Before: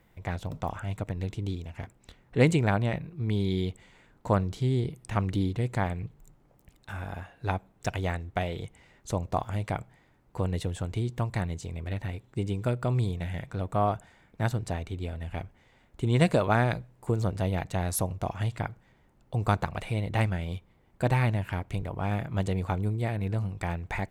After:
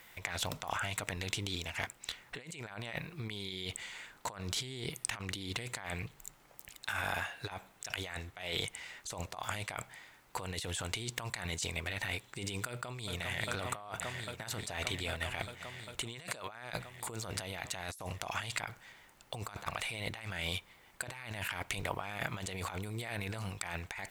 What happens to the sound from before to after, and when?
0:12.67–0:13.47: delay throw 400 ms, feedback 85%, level −12.5 dB
whole clip: tilt shelving filter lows −9.5 dB, about 890 Hz; compressor whose output falls as the input rises −40 dBFS, ratio −1; low-shelf EQ 310 Hz −5 dB; level +1 dB

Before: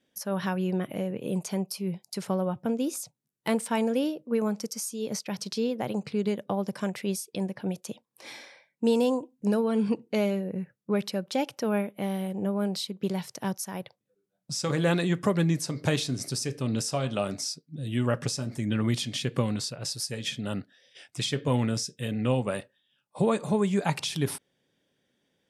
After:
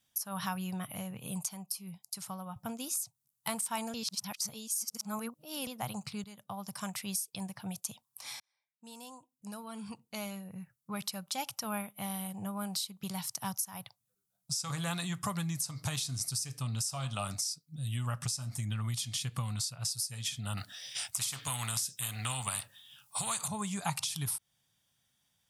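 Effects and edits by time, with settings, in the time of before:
0:01.49–0:02.56: clip gain −6 dB
0:03.94–0:05.67: reverse
0:06.24–0:06.90: fade in linear, from −15.5 dB
0:08.40–0:11.48: fade in
0:20.57–0:23.48: every bin compressed towards the loudest bin 2 to 1
whole clip: drawn EQ curve 110 Hz 0 dB, 370 Hz −23 dB, 11,000 Hz +9 dB; downward compressor, threshold −34 dBFS; flat-topped bell 940 Hz +10.5 dB 1.2 octaves; level +2 dB

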